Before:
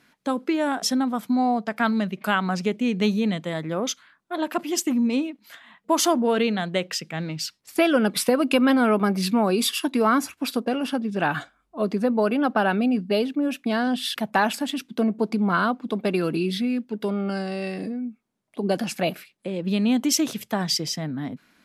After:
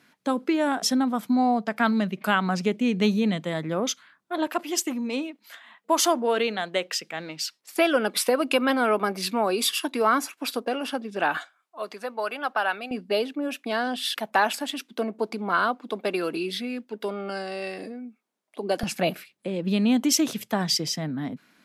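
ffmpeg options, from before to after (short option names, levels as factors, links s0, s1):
-af "asetnsamples=n=441:p=0,asendcmd='4.47 highpass f 370;11.37 highpass f 830;12.91 highpass f 380;18.83 highpass f 110',highpass=100"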